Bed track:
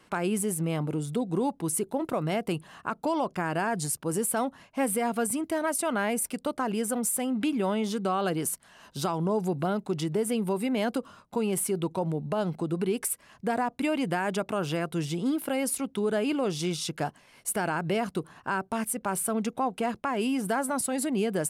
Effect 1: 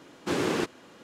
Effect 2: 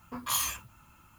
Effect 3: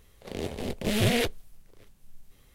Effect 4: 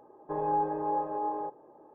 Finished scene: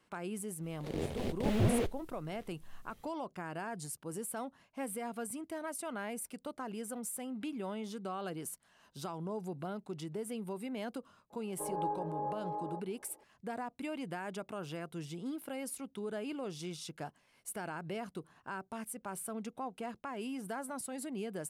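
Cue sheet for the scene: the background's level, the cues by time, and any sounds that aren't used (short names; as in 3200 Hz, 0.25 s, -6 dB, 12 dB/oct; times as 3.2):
bed track -12.5 dB
0.59 add 3 -3.5 dB, fades 0.10 s + slew limiter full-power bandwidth 31 Hz
11.3 add 4 -10.5 dB + bell 580 Hz +4 dB 1.4 oct
not used: 1, 2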